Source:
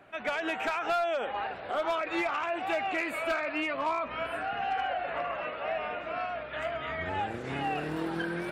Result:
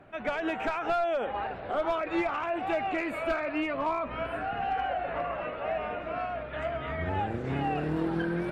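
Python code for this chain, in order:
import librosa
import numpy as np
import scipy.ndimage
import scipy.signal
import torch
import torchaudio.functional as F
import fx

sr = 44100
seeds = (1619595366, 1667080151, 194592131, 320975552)

y = fx.tilt_eq(x, sr, slope=-2.5)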